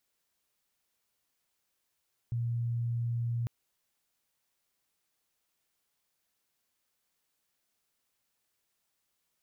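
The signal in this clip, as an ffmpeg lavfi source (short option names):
-f lavfi -i "aevalsrc='0.0355*sin(2*PI*118*t)':d=1.15:s=44100"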